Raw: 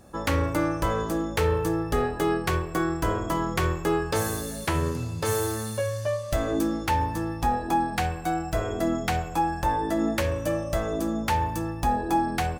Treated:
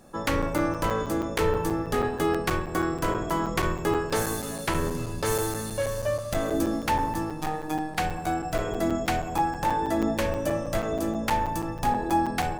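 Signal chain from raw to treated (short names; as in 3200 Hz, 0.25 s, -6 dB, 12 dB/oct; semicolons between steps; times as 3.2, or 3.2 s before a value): octaver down 2 oct, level -2 dB; bell 61 Hz -14 dB 1 oct; 7.31–7.98 robotiser 155 Hz; split-band echo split 1000 Hz, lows 0.189 s, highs 0.569 s, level -12 dB; crackling interface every 0.16 s, samples 256, zero, from 0.42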